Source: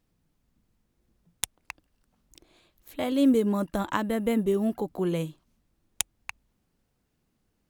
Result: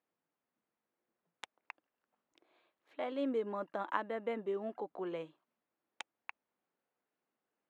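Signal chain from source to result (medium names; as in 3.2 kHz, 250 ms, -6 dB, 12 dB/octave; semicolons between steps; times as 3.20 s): band-pass 490–2100 Hz; trim -5.5 dB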